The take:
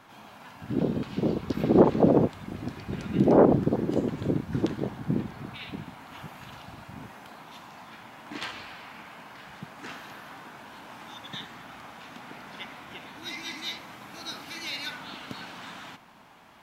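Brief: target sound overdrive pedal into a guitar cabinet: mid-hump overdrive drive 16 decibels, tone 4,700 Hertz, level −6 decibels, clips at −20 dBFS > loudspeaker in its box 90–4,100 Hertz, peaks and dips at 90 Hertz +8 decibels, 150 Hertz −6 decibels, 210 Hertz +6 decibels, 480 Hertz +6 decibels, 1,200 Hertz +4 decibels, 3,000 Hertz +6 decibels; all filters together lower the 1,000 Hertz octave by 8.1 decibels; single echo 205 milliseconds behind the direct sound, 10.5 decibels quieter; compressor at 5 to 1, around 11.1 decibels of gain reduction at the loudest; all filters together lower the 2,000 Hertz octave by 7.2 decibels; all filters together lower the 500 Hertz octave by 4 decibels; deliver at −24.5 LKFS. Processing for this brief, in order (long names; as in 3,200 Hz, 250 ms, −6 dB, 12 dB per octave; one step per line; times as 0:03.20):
parametric band 500 Hz −7 dB
parametric band 1,000 Hz −8 dB
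parametric band 2,000 Hz −8.5 dB
downward compressor 5 to 1, threshold −30 dBFS
single-tap delay 205 ms −10.5 dB
mid-hump overdrive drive 16 dB, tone 4,700 Hz, level −6 dB, clips at −20 dBFS
loudspeaker in its box 90–4,100 Hz, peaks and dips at 90 Hz +8 dB, 150 Hz −6 dB, 210 Hz +6 dB, 480 Hz +6 dB, 1,200 Hz +4 dB, 3,000 Hz +6 dB
level +10 dB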